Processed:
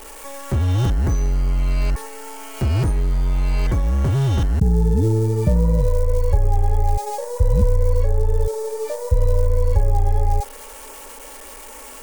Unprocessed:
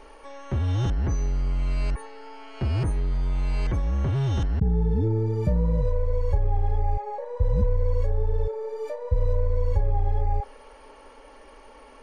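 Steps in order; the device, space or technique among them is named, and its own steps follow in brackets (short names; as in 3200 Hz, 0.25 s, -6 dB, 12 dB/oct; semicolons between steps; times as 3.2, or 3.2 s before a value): budget class-D amplifier (switching dead time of 0.12 ms; switching spikes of -29 dBFS); gain +6 dB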